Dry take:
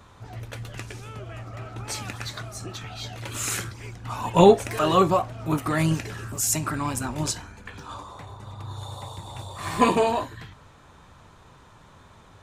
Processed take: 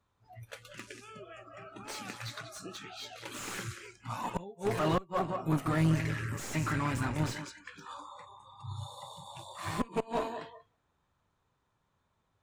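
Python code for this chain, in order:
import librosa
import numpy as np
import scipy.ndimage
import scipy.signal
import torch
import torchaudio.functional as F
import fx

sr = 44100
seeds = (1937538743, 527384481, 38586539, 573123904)

y = fx.peak_eq(x, sr, hz=2000.0, db=10.5, octaves=0.71, at=(5.93, 7.41))
y = fx.echo_tape(y, sr, ms=187, feedback_pct=31, wet_db=-9.0, lp_hz=3400.0, drive_db=6.0, wow_cents=24)
y = fx.dynamic_eq(y, sr, hz=120.0, q=1.0, threshold_db=-38.0, ratio=4.0, max_db=5)
y = fx.gate_flip(y, sr, shuts_db=-8.0, range_db=-28)
y = fx.tube_stage(y, sr, drive_db=17.0, bias=0.55)
y = fx.noise_reduce_blind(y, sr, reduce_db=20)
y = fx.slew_limit(y, sr, full_power_hz=70.0)
y = F.gain(torch.from_numpy(y), -3.5).numpy()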